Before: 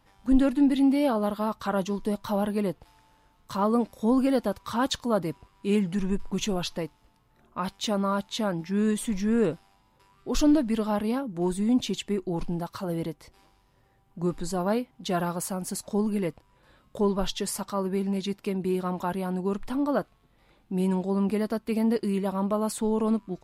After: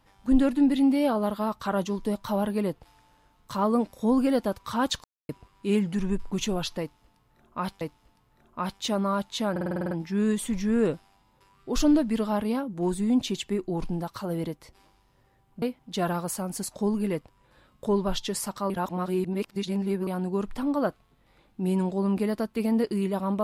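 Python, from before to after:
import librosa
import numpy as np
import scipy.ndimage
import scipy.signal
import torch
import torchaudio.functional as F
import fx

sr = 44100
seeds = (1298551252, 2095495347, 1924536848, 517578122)

y = fx.edit(x, sr, fx.silence(start_s=5.04, length_s=0.25),
    fx.repeat(start_s=6.8, length_s=1.01, count=2),
    fx.stutter(start_s=8.5, slice_s=0.05, count=9),
    fx.cut(start_s=14.21, length_s=0.53),
    fx.reverse_span(start_s=17.82, length_s=1.37), tone=tone)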